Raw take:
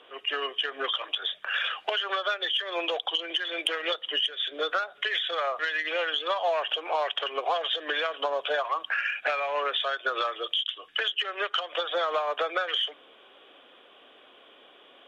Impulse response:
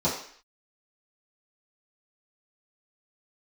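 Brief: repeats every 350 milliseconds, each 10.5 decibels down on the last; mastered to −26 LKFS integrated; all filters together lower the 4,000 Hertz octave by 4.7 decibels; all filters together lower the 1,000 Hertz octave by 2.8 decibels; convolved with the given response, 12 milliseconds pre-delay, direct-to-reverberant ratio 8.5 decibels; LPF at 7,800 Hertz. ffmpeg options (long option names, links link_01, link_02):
-filter_complex "[0:a]lowpass=7800,equalizer=frequency=1000:width_type=o:gain=-3.5,equalizer=frequency=4000:width_type=o:gain=-6.5,aecho=1:1:350|700|1050:0.299|0.0896|0.0269,asplit=2[link_01][link_02];[1:a]atrim=start_sample=2205,adelay=12[link_03];[link_02][link_03]afir=irnorm=-1:irlink=0,volume=-20.5dB[link_04];[link_01][link_04]amix=inputs=2:normalize=0,volume=4dB"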